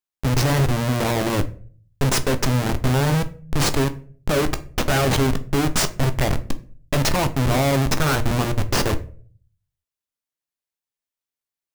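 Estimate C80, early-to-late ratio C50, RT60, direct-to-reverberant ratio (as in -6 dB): 21.0 dB, 16.5 dB, 0.45 s, 9.0 dB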